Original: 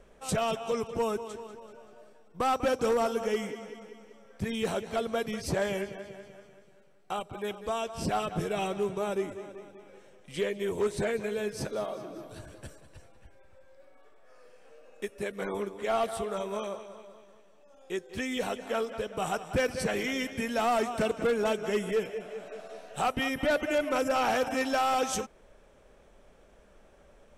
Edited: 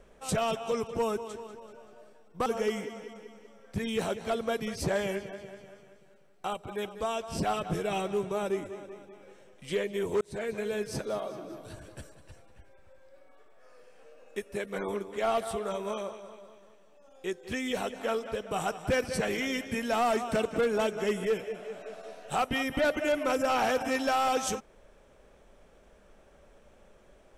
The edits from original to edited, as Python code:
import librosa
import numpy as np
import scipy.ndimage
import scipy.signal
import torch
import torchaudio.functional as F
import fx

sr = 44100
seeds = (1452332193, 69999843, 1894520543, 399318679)

y = fx.edit(x, sr, fx.cut(start_s=2.46, length_s=0.66),
    fx.fade_in_span(start_s=10.87, length_s=0.53, curve='qsin'), tone=tone)